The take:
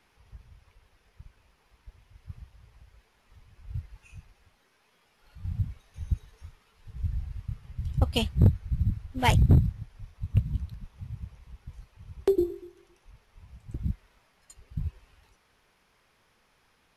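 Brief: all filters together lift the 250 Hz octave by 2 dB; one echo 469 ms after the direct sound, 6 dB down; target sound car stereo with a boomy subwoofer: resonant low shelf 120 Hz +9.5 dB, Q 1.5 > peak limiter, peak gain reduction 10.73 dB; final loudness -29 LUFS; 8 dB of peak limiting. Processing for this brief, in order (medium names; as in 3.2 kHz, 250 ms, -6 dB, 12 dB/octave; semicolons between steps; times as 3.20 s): peaking EQ 250 Hz +5 dB; peak limiter -16.5 dBFS; resonant low shelf 120 Hz +9.5 dB, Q 1.5; delay 469 ms -6 dB; trim -1 dB; peak limiter -16.5 dBFS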